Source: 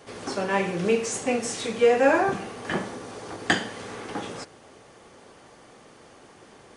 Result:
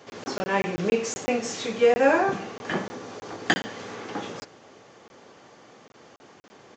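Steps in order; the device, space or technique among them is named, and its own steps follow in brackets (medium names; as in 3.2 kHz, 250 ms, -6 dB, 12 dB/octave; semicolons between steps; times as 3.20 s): call with lost packets (high-pass 110 Hz 12 dB/octave; resampled via 16 kHz; lost packets of 20 ms random)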